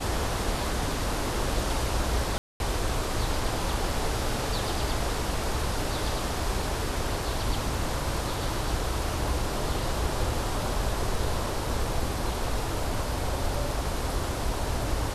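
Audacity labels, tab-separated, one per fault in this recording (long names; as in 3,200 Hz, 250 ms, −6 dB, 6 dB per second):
2.380000	2.600000	drop-out 221 ms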